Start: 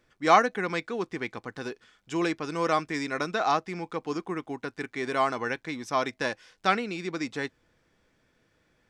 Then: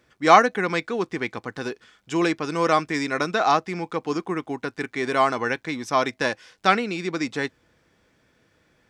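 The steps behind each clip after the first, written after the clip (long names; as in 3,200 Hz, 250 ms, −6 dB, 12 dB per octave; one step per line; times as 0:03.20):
high-pass filter 45 Hz
level +5.5 dB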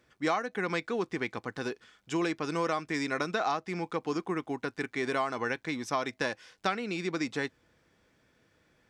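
downward compressor 10 to 1, threshold −21 dBFS, peak gain reduction 14 dB
level −4.5 dB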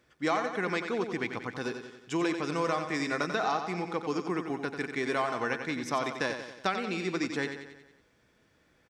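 repeating echo 91 ms, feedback 54%, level −8 dB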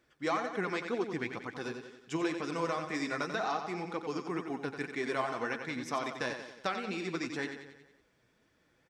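flanger 2 Hz, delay 2.4 ms, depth 6.5 ms, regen +46%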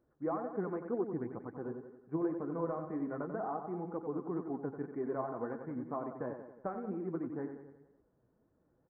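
Gaussian smoothing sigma 8.5 samples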